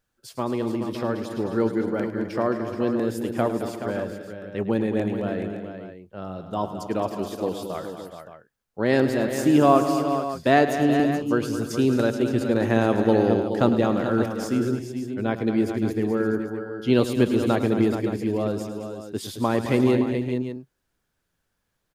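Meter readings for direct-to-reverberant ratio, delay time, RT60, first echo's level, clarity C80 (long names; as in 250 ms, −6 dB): no reverb audible, 105 ms, no reverb audible, −12.5 dB, no reverb audible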